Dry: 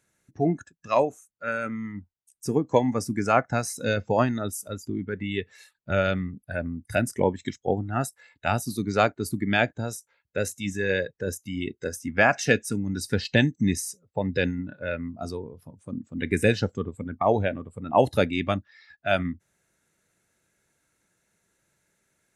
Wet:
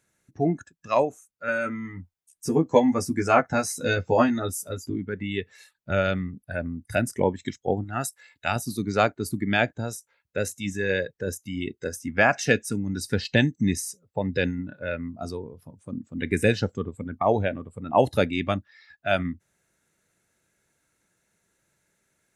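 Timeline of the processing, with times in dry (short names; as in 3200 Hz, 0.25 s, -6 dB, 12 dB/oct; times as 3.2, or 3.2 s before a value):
1.47–4.96 doubler 12 ms -2 dB
7.84–8.56 tilt shelf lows -4.5 dB, about 1400 Hz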